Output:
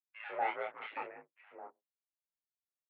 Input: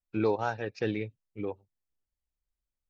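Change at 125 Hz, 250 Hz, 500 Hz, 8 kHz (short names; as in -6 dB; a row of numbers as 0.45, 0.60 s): under -30 dB, -24.5 dB, -12.5 dB, n/a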